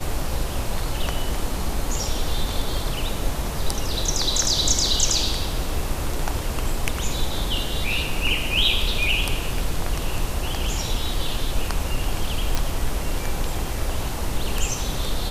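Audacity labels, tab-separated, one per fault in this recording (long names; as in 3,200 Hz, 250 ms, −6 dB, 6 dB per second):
12.550000	12.550000	click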